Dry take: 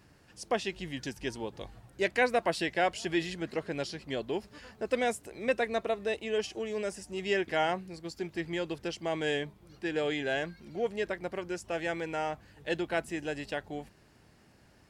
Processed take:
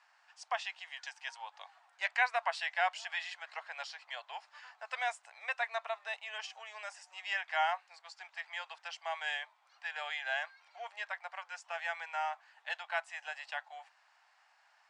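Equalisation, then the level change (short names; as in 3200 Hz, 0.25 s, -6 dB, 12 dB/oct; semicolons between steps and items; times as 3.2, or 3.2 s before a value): steep high-pass 750 Hz 48 dB/oct; steep low-pass 8600 Hz 36 dB/oct; high shelf 3600 Hz -11.5 dB; +2.0 dB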